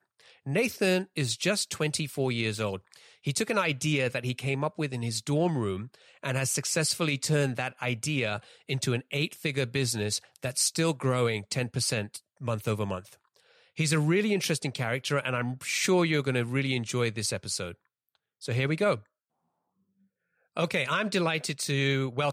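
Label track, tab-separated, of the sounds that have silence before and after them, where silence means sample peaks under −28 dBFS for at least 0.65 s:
13.790000	17.670000	sound
18.450000	18.950000	sound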